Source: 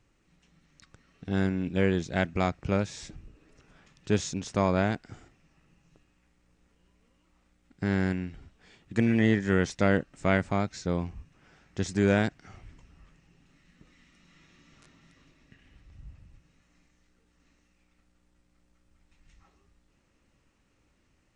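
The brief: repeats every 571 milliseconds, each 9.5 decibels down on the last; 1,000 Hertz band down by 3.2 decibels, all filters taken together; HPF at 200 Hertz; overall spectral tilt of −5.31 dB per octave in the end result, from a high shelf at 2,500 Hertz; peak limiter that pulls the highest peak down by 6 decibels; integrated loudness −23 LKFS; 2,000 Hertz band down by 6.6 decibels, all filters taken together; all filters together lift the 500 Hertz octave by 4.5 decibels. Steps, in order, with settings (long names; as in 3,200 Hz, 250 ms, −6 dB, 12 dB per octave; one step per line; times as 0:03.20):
high-pass filter 200 Hz
parametric band 500 Hz +8 dB
parametric band 1,000 Hz −7.5 dB
parametric band 2,000 Hz −4.5 dB
high-shelf EQ 2,500 Hz −4 dB
brickwall limiter −16 dBFS
repeating echo 571 ms, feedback 33%, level −9.5 dB
level +7.5 dB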